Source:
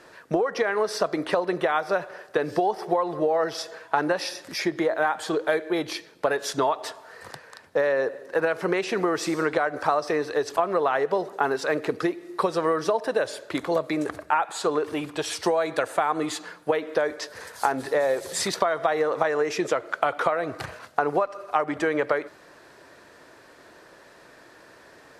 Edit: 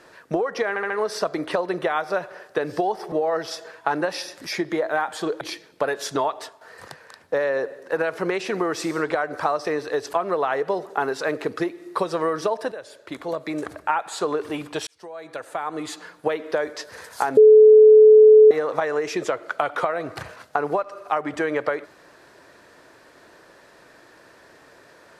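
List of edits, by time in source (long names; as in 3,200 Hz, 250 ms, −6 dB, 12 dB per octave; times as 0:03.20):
0:00.69: stutter 0.07 s, 4 plays
0:02.91–0:03.19: remove
0:05.48–0:05.84: remove
0:06.76–0:07.04: fade out, to −9 dB
0:13.15–0:14.26: fade in, from −13 dB
0:15.30–0:16.65: fade in
0:17.80–0:18.94: beep over 431 Hz −6.5 dBFS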